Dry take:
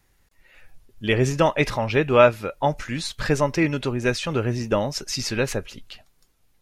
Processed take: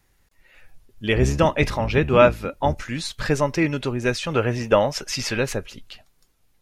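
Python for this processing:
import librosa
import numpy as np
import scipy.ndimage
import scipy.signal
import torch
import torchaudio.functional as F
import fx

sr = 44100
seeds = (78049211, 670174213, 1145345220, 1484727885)

y = fx.octave_divider(x, sr, octaves=1, level_db=0.0, at=(1.15, 2.77))
y = fx.spec_box(y, sr, start_s=4.35, length_s=1.02, low_hz=440.0, high_hz=3600.0, gain_db=6)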